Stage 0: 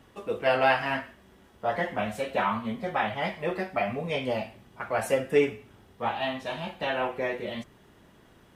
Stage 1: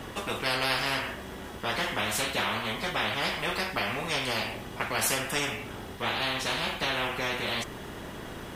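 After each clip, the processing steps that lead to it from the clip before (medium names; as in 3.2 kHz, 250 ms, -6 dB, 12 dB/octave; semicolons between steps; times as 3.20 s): spectrum-flattening compressor 4:1; trim -2.5 dB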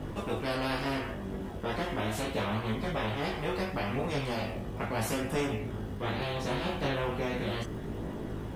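chorus voices 2, 0.37 Hz, delay 20 ms, depth 1.8 ms; crackle 160 per s -42 dBFS; tilt shelf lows +8 dB, about 850 Hz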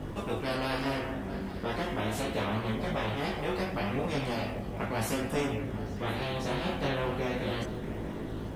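repeats whose band climbs or falls 211 ms, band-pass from 240 Hz, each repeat 1.4 oct, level -5.5 dB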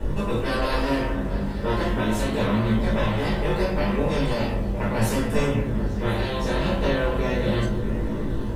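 reverberation RT60 0.40 s, pre-delay 3 ms, DRR -2.5 dB; trim -4.5 dB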